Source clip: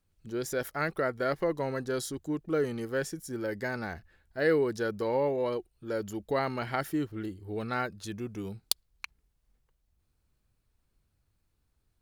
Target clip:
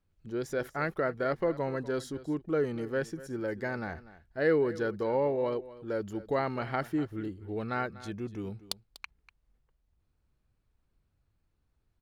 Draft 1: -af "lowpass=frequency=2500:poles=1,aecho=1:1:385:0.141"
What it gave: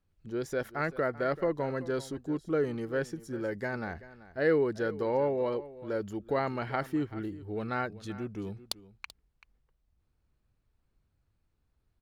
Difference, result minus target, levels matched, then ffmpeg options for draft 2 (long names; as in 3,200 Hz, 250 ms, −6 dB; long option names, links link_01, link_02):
echo 141 ms late
-af "lowpass=frequency=2500:poles=1,aecho=1:1:244:0.141"